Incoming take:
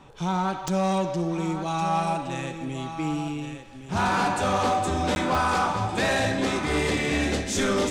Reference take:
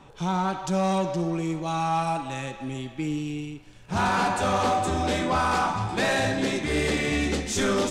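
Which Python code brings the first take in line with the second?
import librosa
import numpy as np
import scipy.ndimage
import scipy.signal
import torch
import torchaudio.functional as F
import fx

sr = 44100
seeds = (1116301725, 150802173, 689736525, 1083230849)

y = fx.fix_declick_ar(x, sr, threshold=10.0)
y = fx.fix_interpolate(y, sr, at_s=(5.15,), length_ms=11.0)
y = fx.fix_echo_inverse(y, sr, delay_ms=1116, level_db=-10.0)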